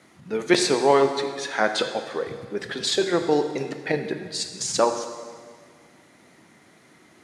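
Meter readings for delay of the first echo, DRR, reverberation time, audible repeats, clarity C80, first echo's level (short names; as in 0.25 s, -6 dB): none, 6.5 dB, 1.8 s, none, 9.0 dB, none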